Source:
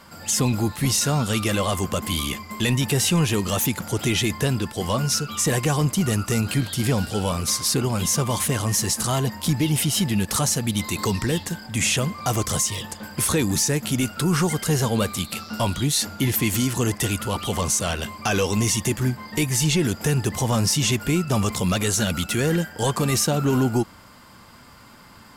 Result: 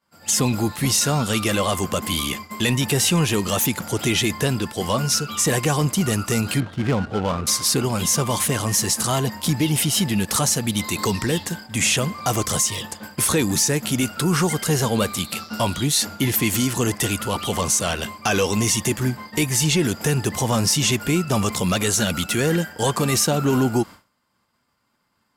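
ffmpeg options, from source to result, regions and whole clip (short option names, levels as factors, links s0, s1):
-filter_complex "[0:a]asettb=1/sr,asplit=3[s0][s1][s2];[s0]atrim=end=6.604[s3];[s1]atrim=start=6.6:end=7.47,asetpts=PTS-STARTPTS,afade=t=in:d=0.004:c=qsin,afade=t=out:st=0.866:d=0.004:c=qsin,equalizer=f=1300:t=o:w=0.38:g=3.5,adynamicsmooth=sensitivity=2.5:basefreq=690[s4];[s2]atrim=start=7.466[s5];[s3][s4]acrossfade=d=0.004:c1=hsin:c2=qsin[s6];[s6][s5]acrossfade=d=0.004:c1=qsin:c2=hsin,lowshelf=f=94:g=-8.5,agate=range=0.0224:threshold=0.0224:ratio=3:detection=peak,volume=1.33"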